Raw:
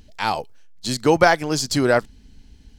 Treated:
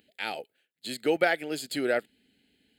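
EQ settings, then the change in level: high-pass 370 Hz 12 dB/octave; static phaser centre 2.5 kHz, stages 4; -4.0 dB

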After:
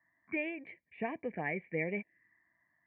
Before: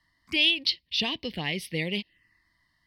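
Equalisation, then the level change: high-pass 140 Hz 12 dB/octave; rippled Chebyshev low-pass 2.4 kHz, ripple 9 dB; band-stop 550 Hz, Q 12; +2.0 dB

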